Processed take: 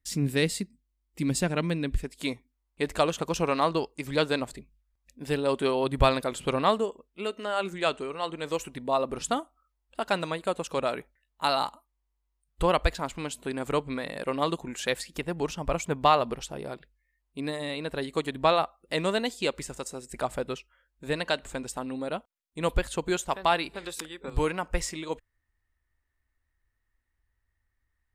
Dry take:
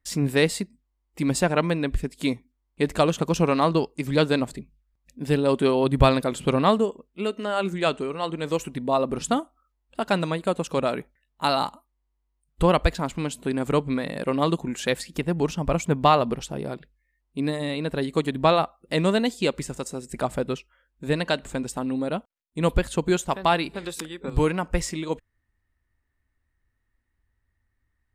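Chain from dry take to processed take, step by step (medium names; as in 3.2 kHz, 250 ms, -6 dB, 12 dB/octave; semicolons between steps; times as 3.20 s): peaking EQ 850 Hz -8 dB 2 oct, from 1.98 s 180 Hz; trim -2 dB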